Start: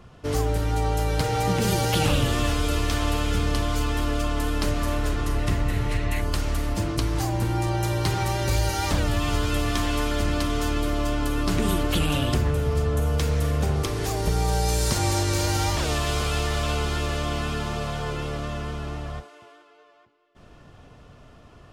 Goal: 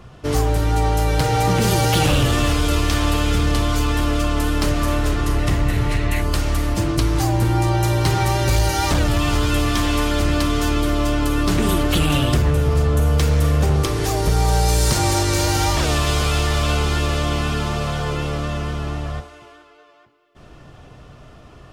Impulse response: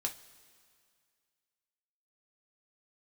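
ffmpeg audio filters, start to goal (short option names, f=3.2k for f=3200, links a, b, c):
-filter_complex "[0:a]asoftclip=type=hard:threshold=-17dB,asplit=2[a][b];[1:a]atrim=start_sample=2205,asetrate=66150,aresample=44100[c];[b][c]afir=irnorm=-1:irlink=0,volume=-2.5dB[d];[a][d]amix=inputs=2:normalize=0,volume=2.5dB"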